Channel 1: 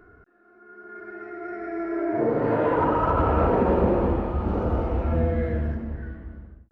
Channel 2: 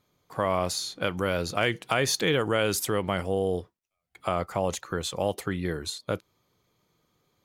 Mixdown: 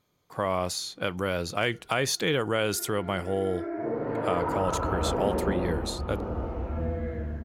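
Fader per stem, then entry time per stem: -7.5, -1.5 dB; 1.65, 0.00 s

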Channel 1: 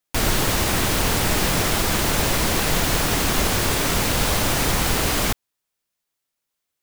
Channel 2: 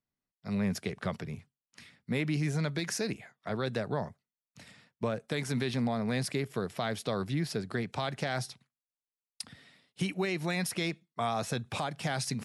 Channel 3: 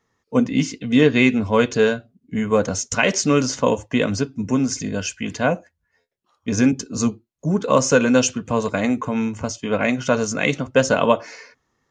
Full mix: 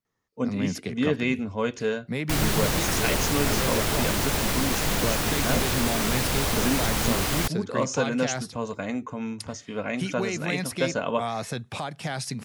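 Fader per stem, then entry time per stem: -5.0, +1.5, -10.0 dB; 2.15, 0.00, 0.05 s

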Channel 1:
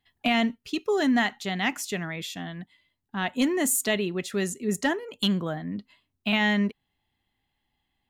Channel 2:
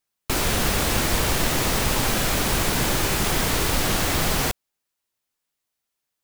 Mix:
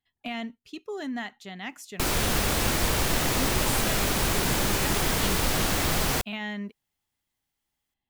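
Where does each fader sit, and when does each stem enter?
-10.5, -3.0 dB; 0.00, 1.70 s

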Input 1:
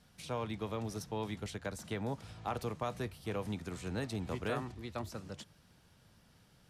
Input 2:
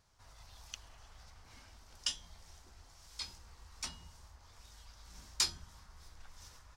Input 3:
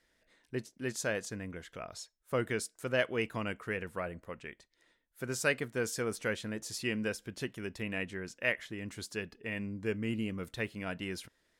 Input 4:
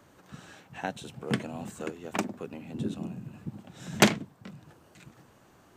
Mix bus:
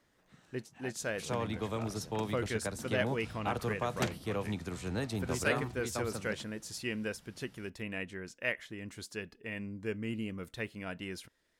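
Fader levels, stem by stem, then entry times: +2.5 dB, off, -2.5 dB, -15.5 dB; 1.00 s, off, 0.00 s, 0.00 s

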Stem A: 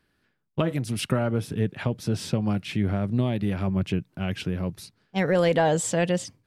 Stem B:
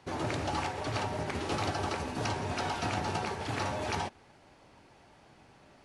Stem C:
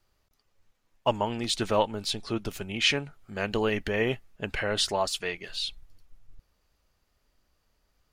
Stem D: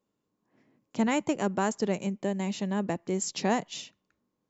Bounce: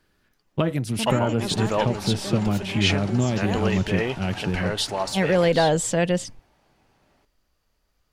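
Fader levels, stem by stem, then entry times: +2.0, -5.5, +0.5, -5.0 dB; 0.00, 1.40, 0.00, 0.00 s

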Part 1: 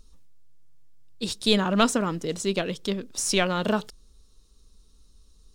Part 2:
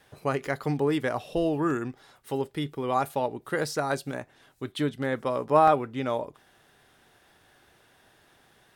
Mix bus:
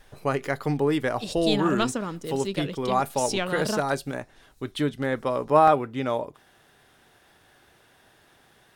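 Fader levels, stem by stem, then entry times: -5.0, +2.0 dB; 0.00, 0.00 s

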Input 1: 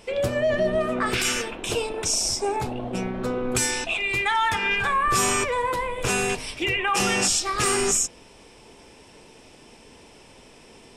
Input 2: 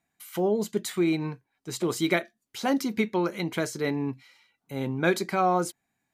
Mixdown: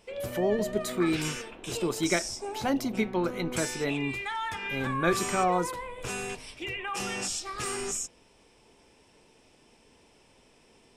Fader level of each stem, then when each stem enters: -11.0, -2.5 dB; 0.00, 0.00 s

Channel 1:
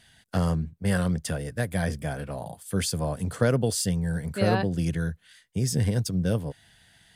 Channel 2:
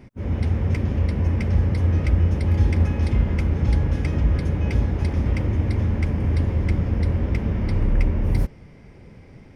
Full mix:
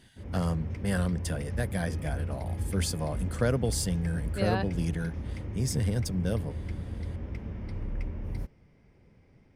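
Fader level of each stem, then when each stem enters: -4.0, -14.5 dB; 0.00, 0.00 s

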